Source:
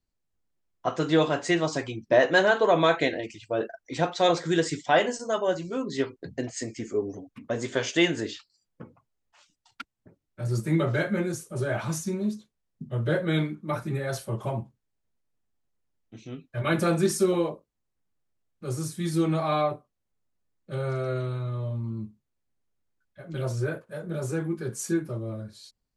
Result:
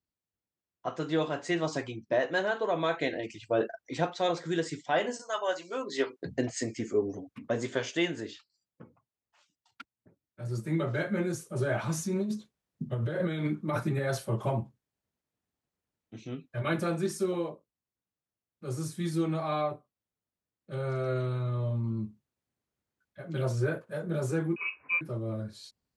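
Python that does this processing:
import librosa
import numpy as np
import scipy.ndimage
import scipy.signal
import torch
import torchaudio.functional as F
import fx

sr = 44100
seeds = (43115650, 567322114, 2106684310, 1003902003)

y = fx.highpass(x, sr, hz=fx.line((5.2, 1100.0), (6.2, 310.0)), slope=12, at=(5.2, 6.2), fade=0.02)
y = fx.over_compress(y, sr, threshold_db=-30.0, ratio=-1.0, at=(11.98, 13.99))
y = fx.freq_invert(y, sr, carrier_hz=2700, at=(24.56, 25.01))
y = fx.rider(y, sr, range_db=5, speed_s=0.5)
y = scipy.signal.sosfilt(scipy.signal.butter(2, 74.0, 'highpass', fs=sr, output='sos'), y)
y = fx.high_shelf(y, sr, hz=5100.0, db=-4.0)
y = y * 10.0 ** (-3.5 / 20.0)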